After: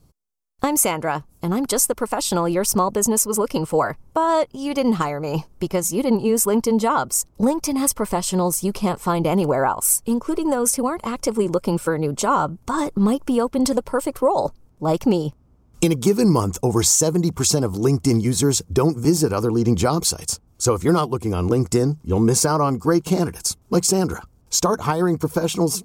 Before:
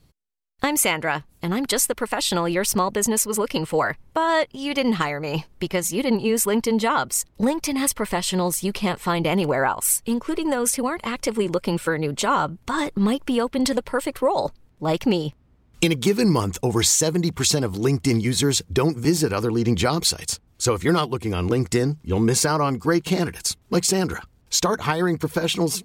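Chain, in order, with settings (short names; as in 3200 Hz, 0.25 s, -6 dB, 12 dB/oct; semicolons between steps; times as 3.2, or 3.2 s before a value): band shelf 2600 Hz -9 dB; notch 1900 Hz, Q 18; gain +2.5 dB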